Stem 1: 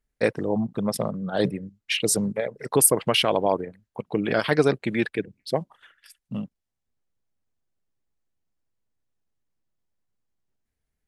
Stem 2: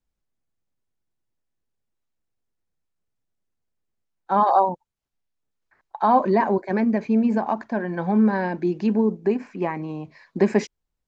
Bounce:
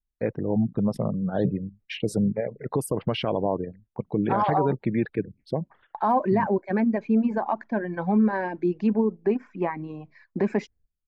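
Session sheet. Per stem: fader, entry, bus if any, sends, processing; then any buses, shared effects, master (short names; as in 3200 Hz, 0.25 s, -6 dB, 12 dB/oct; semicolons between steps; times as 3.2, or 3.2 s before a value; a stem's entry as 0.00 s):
-8.0 dB, 0.00 s, no send, high shelf 4300 Hz -7.5 dB; spectral gate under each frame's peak -30 dB strong; tilt -3 dB/oct
-5.5 dB, 0.00 s, no send, reverb removal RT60 1 s; tone controls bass +1 dB, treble -14 dB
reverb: off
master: AGC gain up to 4.5 dB; gate -53 dBFS, range -13 dB; limiter -13.5 dBFS, peak gain reduction 8.5 dB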